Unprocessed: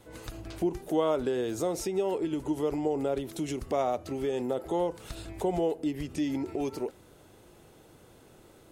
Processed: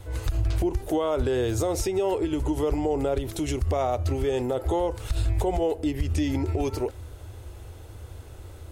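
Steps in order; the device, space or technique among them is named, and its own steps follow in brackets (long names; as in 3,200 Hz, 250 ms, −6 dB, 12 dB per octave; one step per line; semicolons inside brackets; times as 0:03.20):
car stereo with a boomy subwoofer (low shelf with overshoot 120 Hz +12.5 dB, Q 3; brickwall limiter −23 dBFS, peak gain reduction 9 dB)
level +6.5 dB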